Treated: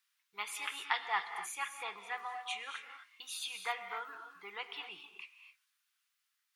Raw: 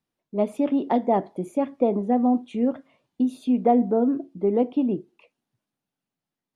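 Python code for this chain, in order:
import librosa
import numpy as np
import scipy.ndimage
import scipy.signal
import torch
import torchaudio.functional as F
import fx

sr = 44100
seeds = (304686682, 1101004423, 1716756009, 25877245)

y = scipy.signal.sosfilt(scipy.signal.cheby2(4, 40, 650.0, 'highpass', fs=sr, output='sos'), x)
y = fx.rev_gated(y, sr, seeds[0], gate_ms=290, shape='rising', drr_db=7.0)
y = F.gain(torch.from_numpy(y), 9.0).numpy()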